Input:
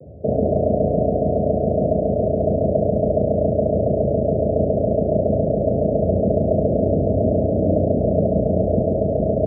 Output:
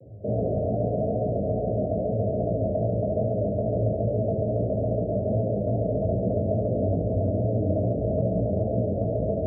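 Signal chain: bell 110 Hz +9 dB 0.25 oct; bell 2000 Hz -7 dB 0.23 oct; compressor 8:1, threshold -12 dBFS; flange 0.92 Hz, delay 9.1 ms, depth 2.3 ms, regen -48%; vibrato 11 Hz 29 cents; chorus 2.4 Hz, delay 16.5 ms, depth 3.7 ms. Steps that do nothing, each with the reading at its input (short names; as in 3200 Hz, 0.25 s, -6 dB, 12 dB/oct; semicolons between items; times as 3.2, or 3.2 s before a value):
bell 2000 Hz: input band ends at 760 Hz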